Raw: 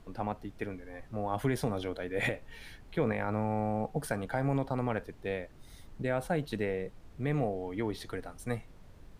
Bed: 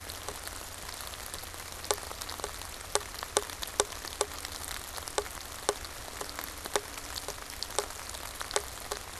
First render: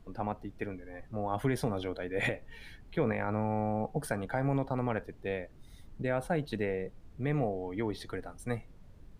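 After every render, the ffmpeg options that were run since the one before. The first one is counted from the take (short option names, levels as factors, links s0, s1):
-af "afftdn=nr=6:nf=-54"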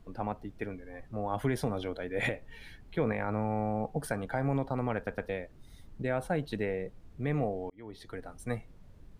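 -filter_complex "[0:a]asplit=5[s0][s1][s2][s3][s4];[s0]atrim=end=5.072[s5];[s1]atrim=start=4.958:end=5.072[s6];[s2]atrim=start=4.958:end=5.072[s7];[s3]atrim=start=5.288:end=7.7,asetpts=PTS-STARTPTS,afade=t=out:st=2.408:d=0.004:c=hsin[s8];[s4]atrim=start=7.7,asetpts=PTS-STARTPTS,afade=t=in:d=0.65[s9];[s5][s6]acrossfade=d=0.004:c1=hsin:c2=hsin[s10];[s10][s7]acrossfade=d=0.004:c1=hsin:c2=hsin[s11];[s8][s9]concat=n=2:v=0:a=1[s12];[s11][s12]acrossfade=d=0.004:c1=hsin:c2=hsin"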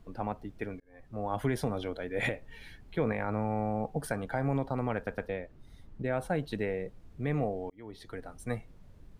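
-filter_complex "[0:a]asettb=1/sr,asplit=3[s0][s1][s2];[s0]atrim=end=5.274[s3];[s1]atrim=start=5.27:end=6.13,asetpts=PTS-STARTPTS,afade=t=in:d=0.004:c=qsin,afade=t=out:st=0.856:d=0.004:c=qsin,highshelf=f=4200:g=-9[s4];[s2]atrim=start=6.126[s5];[s3][s4]acrossfade=d=0.004:c1=hsin:c2=qsin[s6];[s6][s5]acrossfade=d=0.004:c1=qsin:c2=hsin,asplit=2[s7][s8];[s7]atrim=end=0.8,asetpts=PTS-STARTPTS,afade=t=out:st=0.796:d=0.004:c=hsin[s9];[s8]atrim=start=0.8,asetpts=PTS-STARTPTS,afade=t=in:d=0.45[s10];[s9][s10]concat=n=2:v=0:a=1"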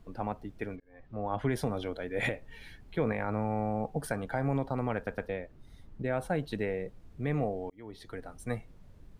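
-filter_complex "[0:a]asplit=3[s0][s1][s2];[s0]afade=t=out:st=0.75:d=0.02[s3];[s1]lowpass=3900,afade=t=in:st=0.75:d=0.02,afade=t=out:st=1.49:d=0.02[s4];[s2]afade=t=in:st=1.49:d=0.02[s5];[s3][s4][s5]amix=inputs=3:normalize=0"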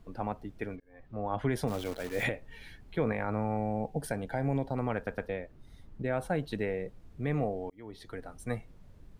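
-filter_complex "[0:a]asplit=3[s0][s1][s2];[s0]afade=t=out:st=1.67:d=0.02[s3];[s1]acrusher=bits=8:dc=4:mix=0:aa=0.000001,afade=t=in:st=1.67:d=0.02,afade=t=out:st=2.23:d=0.02[s4];[s2]afade=t=in:st=2.23:d=0.02[s5];[s3][s4][s5]amix=inputs=3:normalize=0,asettb=1/sr,asplit=3[s6][s7][s8];[s6]atrim=end=3.574[s9];[s7]atrim=start=3.57:end=4.77,asetpts=PTS-STARTPTS,afade=t=in:d=0.004:c=qsin,afade=t=out:st=1.196:d=0.004:c=qsin,equalizer=f=1200:t=o:w=0.38:g=-13[s10];[s8]atrim=start=4.766[s11];[s9][s10]acrossfade=d=0.004:c1=hsin:c2=qsin[s12];[s12][s11]acrossfade=d=0.004:c1=qsin:c2=hsin"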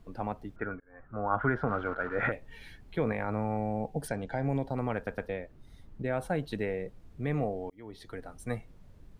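-filter_complex "[0:a]asettb=1/sr,asplit=3[s0][s1][s2];[s0]atrim=end=0.564[s3];[s1]atrim=start=0.56:end=2.32,asetpts=PTS-STARTPTS,afade=t=in:d=0.004:c=qsin,afade=t=out:st=1.756:d=0.004:c=qsin,lowpass=f=1400:t=q:w=10[s4];[s2]atrim=start=2.316[s5];[s3][s4]acrossfade=d=0.004:c1=hsin:c2=qsin[s6];[s6][s5]acrossfade=d=0.004:c1=qsin:c2=hsin,asettb=1/sr,asplit=3[s7][s8][s9];[s7]atrim=end=4.084[s10];[s8]atrim=start=4.08:end=4.49,asetpts=PTS-STARTPTS,afade=t=in:d=0.004:c=qsin,afade=t=out:st=0.406:d=0.004:c=qsin,lowpass=f=7500:w=0.5412,lowpass=f=7500:w=1.3066[s11];[s9]atrim=start=4.486[s12];[s10][s11]acrossfade=d=0.004:c1=hsin:c2=qsin[s13];[s13][s12]acrossfade=d=0.004:c1=qsin:c2=hsin"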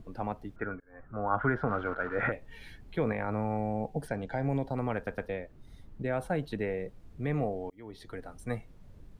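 -filter_complex "[0:a]acrossover=split=590|2800[s0][s1][s2];[s0]acompressor=mode=upward:threshold=0.00631:ratio=2.5[s3];[s2]alimiter=level_in=8.91:limit=0.0631:level=0:latency=1:release=180,volume=0.112[s4];[s3][s1][s4]amix=inputs=3:normalize=0"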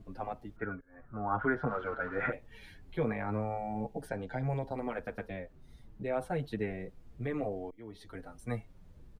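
-filter_complex "[0:a]asplit=2[s0][s1];[s1]adelay=7,afreqshift=-1.5[s2];[s0][s2]amix=inputs=2:normalize=1"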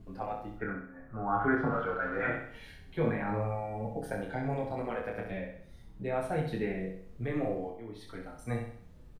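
-filter_complex "[0:a]asplit=2[s0][s1];[s1]adelay=26,volume=0.668[s2];[s0][s2]amix=inputs=2:normalize=0,aecho=1:1:64|128|192|256|320|384:0.501|0.236|0.111|0.052|0.0245|0.0115"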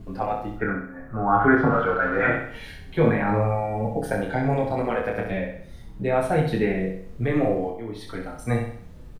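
-af "volume=3.35"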